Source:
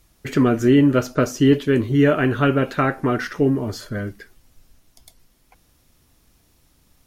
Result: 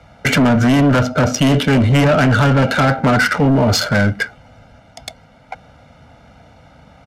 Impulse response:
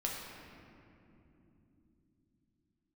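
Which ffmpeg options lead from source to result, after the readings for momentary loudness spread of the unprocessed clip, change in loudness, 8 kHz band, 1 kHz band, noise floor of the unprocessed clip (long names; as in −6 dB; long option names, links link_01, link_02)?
13 LU, +5.0 dB, +11.5 dB, +8.5 dB, −60 dBFS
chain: -filter_complex "[0:a]highpass=81,lowshelf=frequency=220:gain=-10.5,aecho=1:1:1.4:0.88,acrossover=split=320[link_01][link_02];[link_02]acompressor=threshold=-34dB:ratio=3[link_03];[link_01][link_03]amix=inputs=2:normalize=0,aeval=exprs='0.251*(cos(1*acos(clip(val(0)/0.251,-1,1)))-cos(1*PI/2))+0.0398*(cos(5*acos(clip(val(0)/0.251,-1,1)))-cos(5*PI/2))':channel_layout=same,acrossover=split=140[link_04][link_05];[link_05]adynamicsmooth=sensitivity=7.5:basefreq=1500[link_06];[link_04][link_06]amix=inputs=2:normalize=0,asoftclip=type=tanh:threshold=-18dB,apsyclip=26.5dB,aresample=32000,aresample=44100,volume=-9dB"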